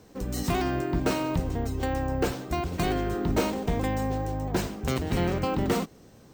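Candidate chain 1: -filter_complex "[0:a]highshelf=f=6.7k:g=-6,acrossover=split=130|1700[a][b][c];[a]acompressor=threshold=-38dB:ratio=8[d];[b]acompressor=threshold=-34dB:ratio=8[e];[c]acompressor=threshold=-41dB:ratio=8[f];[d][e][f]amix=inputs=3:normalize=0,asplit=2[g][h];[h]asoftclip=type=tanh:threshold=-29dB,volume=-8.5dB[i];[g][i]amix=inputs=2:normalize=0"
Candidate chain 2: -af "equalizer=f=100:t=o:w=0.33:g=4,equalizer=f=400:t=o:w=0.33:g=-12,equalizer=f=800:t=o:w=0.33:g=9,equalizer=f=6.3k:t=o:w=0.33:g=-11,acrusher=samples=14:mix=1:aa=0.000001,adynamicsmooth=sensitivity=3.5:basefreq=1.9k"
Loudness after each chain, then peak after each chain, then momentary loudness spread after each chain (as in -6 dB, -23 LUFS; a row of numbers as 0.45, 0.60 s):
-34.0, -28.0 LUFS; -19.0, -13.5 dBFS; 2, 5 LU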